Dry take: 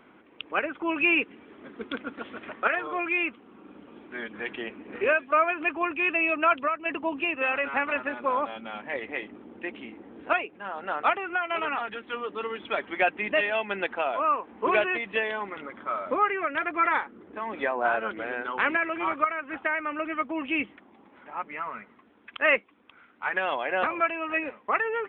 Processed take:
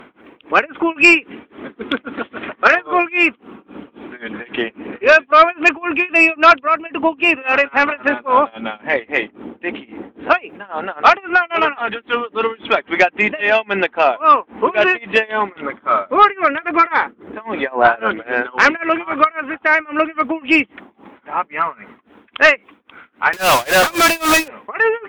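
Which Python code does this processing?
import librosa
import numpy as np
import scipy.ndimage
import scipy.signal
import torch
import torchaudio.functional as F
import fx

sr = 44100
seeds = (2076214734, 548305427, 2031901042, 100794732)

y = fx.quant_companded(x, sr, bits=2, at=(23.33, 24.48))
y = y * (1.0 - 0.96 / 2.0 + 0.96 / 2.0 * np.cos(2.0 * np.pi * 3.7 * (np.arange(len(y)) / sr)))
y = fx.fold_sine(y, sr, drive_db=14, ceiling_db=0.0)
y = y * librosa.db_to_amplitude(-1.5)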